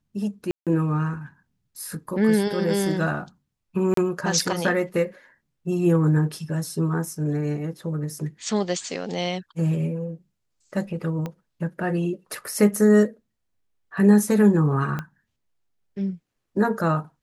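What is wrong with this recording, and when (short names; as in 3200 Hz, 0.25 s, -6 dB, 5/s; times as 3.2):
0.51–0.67 gap 0.157 s
3.94–3.97 gap 33 ms
11.26 pop -18 dBFS
14.99 pop -16 dBFS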